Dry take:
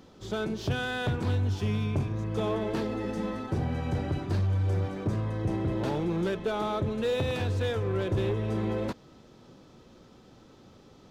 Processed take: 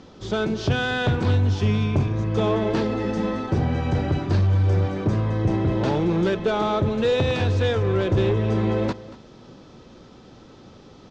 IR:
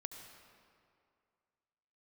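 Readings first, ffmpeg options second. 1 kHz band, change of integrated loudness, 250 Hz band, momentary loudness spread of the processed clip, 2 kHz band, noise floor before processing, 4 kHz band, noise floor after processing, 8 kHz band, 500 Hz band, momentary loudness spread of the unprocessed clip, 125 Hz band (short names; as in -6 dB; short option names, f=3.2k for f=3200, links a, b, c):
+7.5 dB, +7.5 dB, +7.5 dB, 4 LU, +7.5 dB, -55 dBFS, +7.5 dB, -47 dBFS, n/a, +7.5 dB, 4 LU, +8.0 dB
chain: -af "lowpass=f=6.8k:w=0.5412,lowpass=f=6.8k:w=1.3066,aecho=1:1:232:0.133,volume=7.5dB"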